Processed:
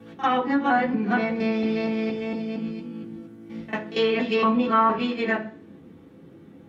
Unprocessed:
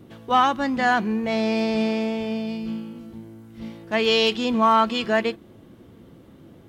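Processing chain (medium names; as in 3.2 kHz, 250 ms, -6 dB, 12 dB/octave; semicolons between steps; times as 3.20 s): time reversed locally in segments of 233 ms; pre-echo 45 ms -16 dB; reverberation RT60 0.45 s, pre-delay 3 ms, DRR -3 dB; low-pass that closes with the level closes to 2.8 kHz, closed at -9.5 dBFS; trim -8 dB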